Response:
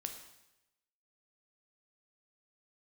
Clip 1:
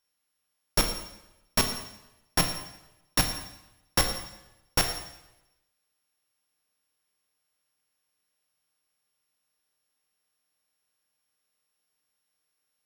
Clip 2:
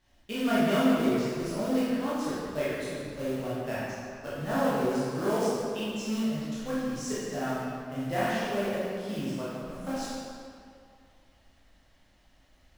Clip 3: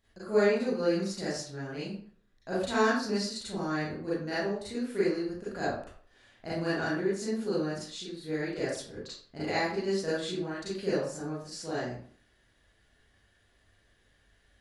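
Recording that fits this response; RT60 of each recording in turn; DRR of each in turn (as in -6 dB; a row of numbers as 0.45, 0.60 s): 1; 0.90, 2.4, 0.50 s; 5.0, -10.0, -11.0 dB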